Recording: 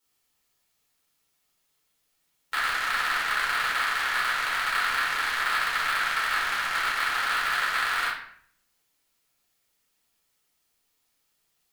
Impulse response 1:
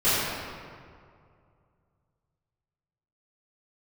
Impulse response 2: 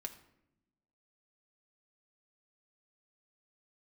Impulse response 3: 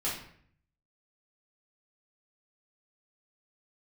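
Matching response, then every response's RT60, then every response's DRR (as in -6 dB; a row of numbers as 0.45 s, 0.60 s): 3; 2.2 s, 0.85 s, 0.60 s; -16.0 dB, 4.5 dB, -8.0 dB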